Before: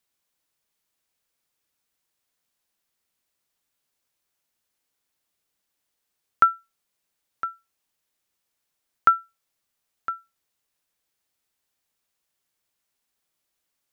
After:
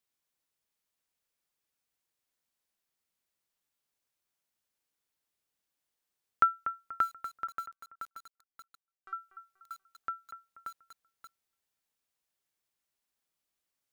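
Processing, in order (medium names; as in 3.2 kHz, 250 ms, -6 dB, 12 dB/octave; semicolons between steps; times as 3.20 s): 7.47–9.13 s: inharmonic resonator 380 Hz, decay 0.58 s, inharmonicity 0.002; bucket-brigade echo 241 ms, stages 4096, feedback 33%, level -11 dB; bit-crushed delay 580 ms, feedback 35%, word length 7-bit, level -4.5 dB; trim -7 dB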